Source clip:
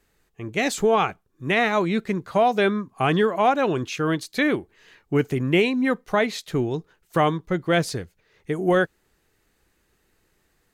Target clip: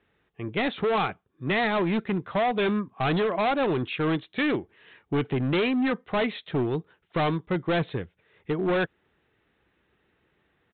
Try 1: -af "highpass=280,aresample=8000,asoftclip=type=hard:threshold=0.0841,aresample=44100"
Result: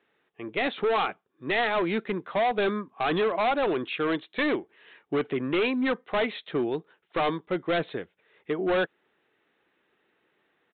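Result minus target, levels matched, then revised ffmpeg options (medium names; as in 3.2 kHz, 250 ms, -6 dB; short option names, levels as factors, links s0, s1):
125 Hz band -9.0 dB
-af "highpass=75,aresample=8000,asoftclip=type=hard:threshold=0.0841,aresample=44100"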